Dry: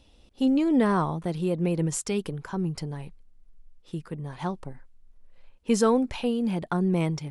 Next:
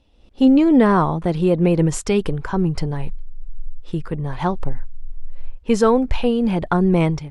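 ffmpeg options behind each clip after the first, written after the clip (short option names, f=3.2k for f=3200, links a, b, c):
-af "lowpass=f=2.8k:p=1,asubboost=boost=5.5:cutoff=74,dynaudnorm=f=110:g=5:m=13dB,volume=-1.5dB"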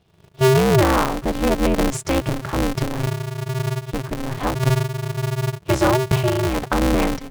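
-af "aeval=exprs='val(0)*sgn(sin(2*PI*130*n/s))':c=same,volume=-2dB"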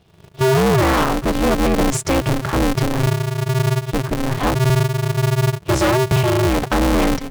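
-af "asoftclip=type=hard:threshold=-19dB,volume=6dB"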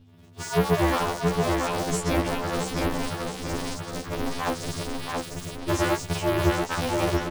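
-filter_complex "[0:a]aeval=exprs='val(0)+0.0112*(sin(2*PI*50*n/s)+sin(2*PI*2*50*n/s)/2+sin(2*PI*3*50*n/s)/3+sin(2*PI*4*50*n/s)/4+sin(2*PI*5*50*n/s)/5)':c=same,asplit=2[a][b];[b]adelay=677,lowpass=f=4.8k:p=1,volume=-3dB,asplit=2[c][d];[d]adelay=677,lowpass=f=4.8k:p=1,volume=0.54,asplit=2[e][f];[f]adelay=677,lowpass=f=4.8k:p=1,volume=0.54,asplit=2[g][h];[h]adelay=677,lowpass=f=4.8k:p=1,volume=0.54,asplit=2[i][j];[j]adelay=677,lowpass=f=4.8k:p=1,volume=0.54,asplit=2[k][l];[l]adelay=677,lowpass=f=4.8k:p=1,volume=0.54,asplit=2[m][n];[n]adelay=677,lowpass=f=4.8k:p=1,volume=0.54[o];[c][e][g][i][k][m][o]amix=inputs=7:normalize=0[p];[a][p]amix=inputs=2:normalize=0,afftfilt=real='re*2*eq(mod(b,4),0)':imag='im*2*eq(mod(b,4),0)':win_size=2048:overlap=0.75,volume=-5.5dB"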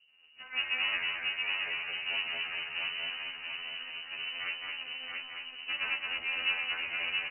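-filter_complex "[0:a]flanger=delay=4.7:depth=5.6:regen=-79:speed=0.46:shape=sinusoidal,asplit=2[a][b];[b]aecho=0:1:220:0.668[c];[a][c]amix=inputs=2:normalize=0,lowpass=f=2.6k:t=q:w=0.5098,lowpass=f=2.6k:t=q:w=0.6013,lowpass=f=2.6k:t=q:w=0.9,lowpass=f=2.6k:t=q:w=2.563,afreqshift=-3000,volume=-6.5dB"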